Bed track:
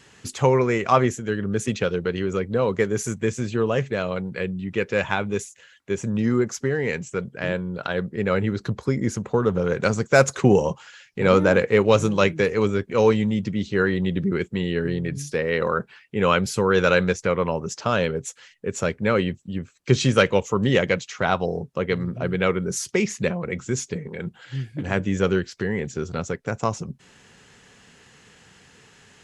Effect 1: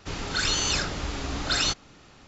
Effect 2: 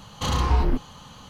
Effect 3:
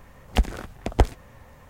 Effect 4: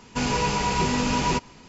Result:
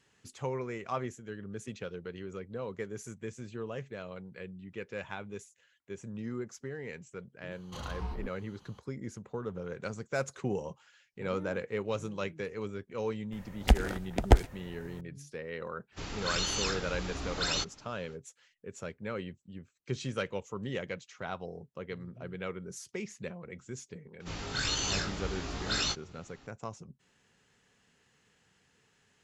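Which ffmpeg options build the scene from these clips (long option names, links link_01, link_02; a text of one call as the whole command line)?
ffmpeg -i bed.wav -i cue0.wav -i cue1.wav -i cue2.wav -filter_complex "[1:a]asplit=2[link_01][link_02];[0:a]volume=-17dB[link_03];[3:a]bandreject=frequency=1100:width=8.1[link_04];[link_02]flanger=delay=17.5:depth=2.3:speed=1.9[link_05];[2:a]atrim=end=1.29,asetpts=PTS-STARTPTS,volume=-17.5dB,afade=type=in:duration=0.004:curve=hsin,afade=type=out:start_time=1.286:duration=0.004:curve=hsin,adelay=7510[link_06];[link_04]atrim=end=1.69,asetpts=PTS-STARTPTS,volume=-1.5dB,afade=type=in:duration=0.004:curve=hsin,afade=type=out:start_time=1.686:duration=0.004:curve=hsin,adelay=587412S[link_07];[link_01]atrim=end=2.27,asetpts=PTS-STARTPTS,volume=-7dB,afade=type=in:duration=0.05,afade=type=out:start_time=2.22:duration=0.05,adelay=15910[link_08];[link_05]atrim=end=2.27,asetpts=PTS-STARTPTS,volume=-3.5dB,afade=type=in:duration=0.004:curve=hsin,afade=type=out:start_time=2.266:duration=0.004:curve=hsin,adelay=24200[link_09];[link_03][link_06][link_07][link_08][link_09]amix=inputs=5:normalize=0" out.wav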